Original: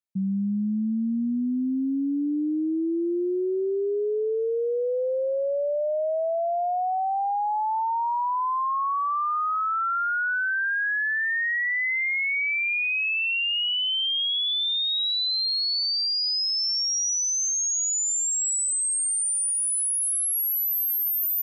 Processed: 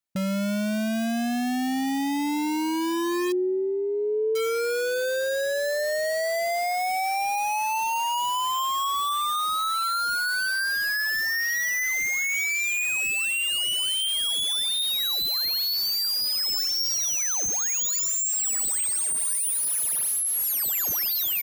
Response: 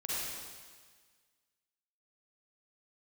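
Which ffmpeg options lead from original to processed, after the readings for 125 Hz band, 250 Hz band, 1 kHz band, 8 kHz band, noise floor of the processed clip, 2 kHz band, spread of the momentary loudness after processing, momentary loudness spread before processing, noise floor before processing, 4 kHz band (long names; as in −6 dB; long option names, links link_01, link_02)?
can't be measured, −1.0 dB, −0.5 dB, 0.0 dB, −26 dBFS, −0.5 dB, 4 LU, 4 LU, −25 dBFS, −0.5 dB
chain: -filter_complex "[0:a]adynamicequalizer=threshold=0.00631:dfrequency=400:dqfactor=5.6:tfrequency=400:tqfactor=5.6:attack=5:release=100:ratio=0.375:range=2.5:mode=cutabove:tftype=bell,asplit=2[link_01][link_02];[link_02]aeval=exprs='(mod(16.8*val(0)+1,2)-1)/16.8':channel_layout=same,volume=-5dB[link_03];[link_01][link_03]amix=inputs=2:normalize=0,asplit=2[link_04][link_05];[link_05]adelay=1516,volume=-26dB,highshelf=frequency=4000:gain=-34.1[link_06];[link_04][link_06]amix=inputs=2:normalize=0"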